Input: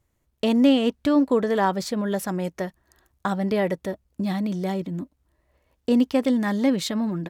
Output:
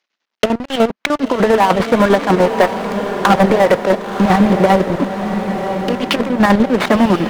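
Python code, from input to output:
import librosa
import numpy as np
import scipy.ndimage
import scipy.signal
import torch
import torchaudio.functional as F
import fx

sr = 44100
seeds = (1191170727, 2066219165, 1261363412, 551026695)

y = fx.cvsd(x, sr, bps=32000)
y = fx.over_compress(y, sr, threshold_db=-24.0, ratio=-0.5)
y = scipy.signal.sosfilt(scipy.signal.butter(8, 190.0, 'highpass', fs=sr, output='sos'), y)
y = fx.env_lowpass_down(y, sr, base_hz=1000.0, full_db=-27.5)
y = fx.peak_eq(y, sr, hz=2400.0, db=9.0, octaves=3.0)
y = fx.chopper(y, sr, hz=10.0, depth_pct=65, duty_pct=55)
y = fx.peak_eq(y, sr, hz=250.0, db=-7.5, octaves=2.2)
y = fx.leveller(y, sr, passes=5)
y = fx.echo_diffused(y, sr, ms=1031, feedback_pct=51, wet_db=-7.5)
y = y * librosa.db_to_amplitude(3.5)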